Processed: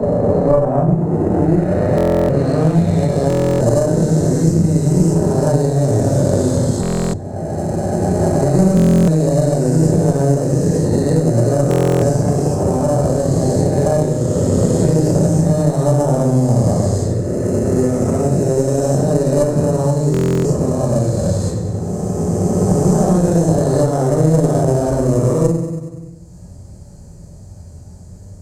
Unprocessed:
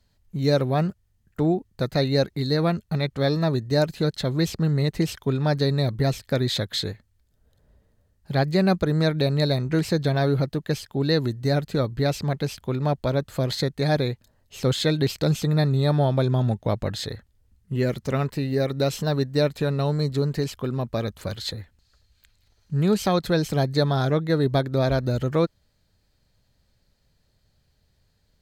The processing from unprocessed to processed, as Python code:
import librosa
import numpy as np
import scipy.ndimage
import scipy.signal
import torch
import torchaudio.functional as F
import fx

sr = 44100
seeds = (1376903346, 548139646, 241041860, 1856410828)

p1 = fx.spec_swells(x, sr, rise_s=2.82)
p2 = scipy.signal.sosfilt(scipy.signal.butter(2, 58.0, 'highpass', fs=sr, output='sos'), p1)
p3 = fx.doubler(p2, sr, ms=23.0, db=-12.0)
p4 = p3 + fx.echo_feedback(p3, sr, ms=95, feedback_pct=53, wet_db=-11, dry=0)
p5 = fx.room_shoebox(p4, sr, seeds[0], volume_m3=100.0, walls='mixed', distance_m=1.4)
p6 = fx.sample_hold(p5, sr, seeds[1], rate_hz=2300.0, jitter_pct=0)
p7 = p5 + F.gain(torch.from_numpy(p6), -7.0).numpy()
p8 = fx.filter_sweep_lowpass(p7, sr, from_hz=980.0, to_hz=6000.0, start_s=0.87, end_s=3.7, q=1.4)
p9 = fx.cheby_harmonics(p8, sr, harmonics=(2,), levels_db=(-8,), full_scale_db=7.0)
p10 = fx.curve_eq(p9, sr, hz=(120.0, 770.0, 3700.0, 7800.0), db=(0, -6, -28, 5))
p11 = fx.buffer_glitch(p10, sr, at_s=(1.96, 3.28, 6.81, 8.75, 11.69, 20.12), block=1024, repeats=13)
p12 = fx.band_squash(p11, sr, depth_pct=70)
y = F.gain(torch.from_numpy(p12), -2.5).numpy()